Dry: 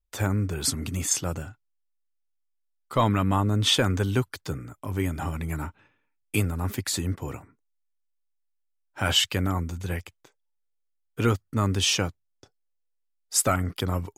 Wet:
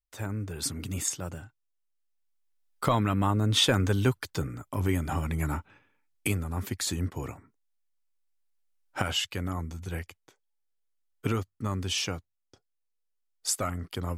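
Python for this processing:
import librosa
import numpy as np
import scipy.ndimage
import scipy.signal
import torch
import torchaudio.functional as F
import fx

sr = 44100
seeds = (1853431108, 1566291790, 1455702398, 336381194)

y = fx.doppler_pass(x, sr, speed_mps=11, closest_m=15.0, pass_at_s=4.45)
y = fx.recorder_agc(y, sr, target_db=-18.0, rise_db_per_s=6.0, max_gain_db=30)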